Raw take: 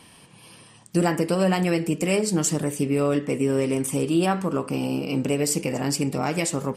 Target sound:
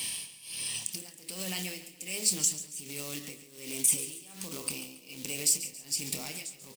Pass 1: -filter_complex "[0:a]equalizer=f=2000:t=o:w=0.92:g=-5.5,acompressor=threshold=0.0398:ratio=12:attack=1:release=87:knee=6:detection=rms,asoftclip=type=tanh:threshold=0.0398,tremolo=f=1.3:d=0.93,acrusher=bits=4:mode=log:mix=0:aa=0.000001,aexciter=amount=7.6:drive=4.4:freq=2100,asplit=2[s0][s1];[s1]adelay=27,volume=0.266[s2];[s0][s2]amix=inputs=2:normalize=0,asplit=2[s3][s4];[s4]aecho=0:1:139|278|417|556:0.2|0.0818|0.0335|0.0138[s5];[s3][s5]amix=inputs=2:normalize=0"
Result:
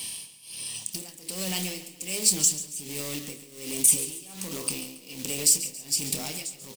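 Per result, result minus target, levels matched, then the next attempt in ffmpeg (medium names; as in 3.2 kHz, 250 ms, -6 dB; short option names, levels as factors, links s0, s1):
compression: peak gain reduction -7 dB; 2 kHz band -3.5 dB
-filter_complex "[0:a]equalizer=f=2000:t=o:w=0.92:g=-5.5,acompressor=threshold=0.0168:ratio=12:attack=1:release=87:knee=6:detection=rms,asoftclip=type=tanh:threshold=0.0398,tremolo=f=1.3:d=0.93,acrusher=bits=4:mode=log:mix=0:aa=0.000001,aexciter=amount=7.6:drive=4.4:freq=2100,asplit=2[s0][s1];[s1]adelay=27,volume=0.266[s2];[s0][s2]amix=inputs=2:normalize=0,asplit=2[s3][s4];[s4]aecho=0:1:139|278|417|556:0.2|0.0818|0.0335|0.0138[s5];[s3][s5]amix=inputs=2:normalize=0"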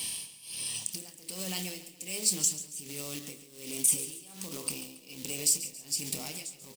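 2 kHz band -3.0 dB
-filter_complex "[0:a]acompressor=threshold=0.0168:ratio=12:attack=1:release=87:knee=6:detection=rms,asoftclip=type=tanh:threshold=0.0398,tremolo=f=1.3:d=0.93,acrusher=bits=4:mode=log:mix=0:aa=0.000001,aexciter=amount=7.6:drive=4.4:freq=2100,asplit=2[s0][s1];[s1]adelay=27,volume=0.266[s2];[s0][s2]amix=inputs=2:normalize=0,asplit=2[s3][s4];[s4]aecho=0:1:139|278|417|556:0.2|0.0818|0.0335|0.0138[s5];[s3][s5]amix=inputs=2:normalize=0"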